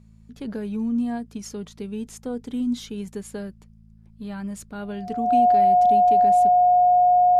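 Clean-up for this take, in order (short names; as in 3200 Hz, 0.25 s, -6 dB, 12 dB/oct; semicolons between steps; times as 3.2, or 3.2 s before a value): de-hum 54.6 Hz, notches 4; notch 720 Hz, Q 30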